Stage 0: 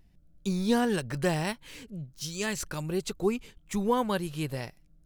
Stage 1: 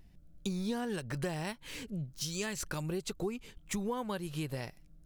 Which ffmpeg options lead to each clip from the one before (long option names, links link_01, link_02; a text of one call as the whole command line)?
ffmpeg -i in.wav -af "acompressor=threshold=-36dB:ratio=5,volume=2.5dB" out.wav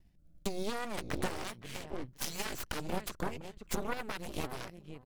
ffmpeg -i in.wav -filter_complex "[0:a]agate=range=-33dB:threshold=-55dB:ratio=3:detection=peak,asplit=2[link_01][link_02];[link_02]adelay=515,lowpass=frequency=1600:poles=1,volume=-7.5dB,asplit=2[link_03][link_04];[link_04]adelay=515,lowpass=frequency=1600:poles=1,volume=0.24,asplit=2[link_05][link_06];[link_06]adelay=515,lowpass=frequency=1600:poles=1,volume=0.24[link_07];[link_01][link_03][link_05][link_07]amix=inputs=4:normalize=0,aeval=exprs='0.0891*(cos(1*acos(clip(val(0)/0.0891,-1,1)))-cos(1*PI/2))+0.00355*(cos(3*acos(clip(val(0)/0.0891,-1,1)))-cos(3*PI/2))+0.0251*(cos(6*acos(clip(val(0)/0.0891,-1,1)))-cos(6*PI/2))+0.02*(cos(7*acos(clip(val(0)/0.0891,-1,1)))-cos(7*PI/2))':channel_layout=same,volume=-1.5dB" out.wav